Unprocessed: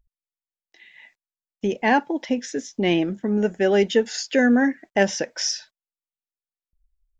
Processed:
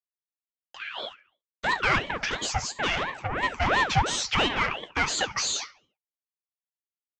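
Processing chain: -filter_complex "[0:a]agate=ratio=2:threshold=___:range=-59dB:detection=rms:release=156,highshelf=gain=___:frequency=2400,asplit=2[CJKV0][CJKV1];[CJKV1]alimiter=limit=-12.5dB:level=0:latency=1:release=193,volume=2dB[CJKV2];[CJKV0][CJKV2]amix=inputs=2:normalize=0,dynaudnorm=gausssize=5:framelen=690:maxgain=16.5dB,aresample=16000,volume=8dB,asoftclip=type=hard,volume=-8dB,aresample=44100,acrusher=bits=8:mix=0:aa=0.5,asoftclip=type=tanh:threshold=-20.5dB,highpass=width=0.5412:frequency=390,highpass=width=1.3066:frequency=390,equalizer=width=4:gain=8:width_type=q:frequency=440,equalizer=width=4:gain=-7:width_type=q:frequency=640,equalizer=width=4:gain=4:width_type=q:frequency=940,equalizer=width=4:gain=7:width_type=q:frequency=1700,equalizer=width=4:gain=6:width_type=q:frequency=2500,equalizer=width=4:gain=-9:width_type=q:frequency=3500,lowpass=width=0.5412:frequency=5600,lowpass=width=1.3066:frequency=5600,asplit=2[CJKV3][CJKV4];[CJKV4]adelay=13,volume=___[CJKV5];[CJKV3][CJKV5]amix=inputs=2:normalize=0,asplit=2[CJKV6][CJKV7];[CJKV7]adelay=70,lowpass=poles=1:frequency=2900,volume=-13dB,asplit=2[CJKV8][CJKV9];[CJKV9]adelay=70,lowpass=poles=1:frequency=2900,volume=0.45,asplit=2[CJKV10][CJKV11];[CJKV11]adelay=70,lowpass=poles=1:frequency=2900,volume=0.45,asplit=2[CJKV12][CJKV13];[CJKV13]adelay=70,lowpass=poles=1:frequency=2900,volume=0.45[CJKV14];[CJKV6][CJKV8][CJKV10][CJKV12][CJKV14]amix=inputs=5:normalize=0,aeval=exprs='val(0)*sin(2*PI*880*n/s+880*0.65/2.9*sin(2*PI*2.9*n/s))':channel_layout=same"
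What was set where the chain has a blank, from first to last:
-50dB, 11, -10.5dB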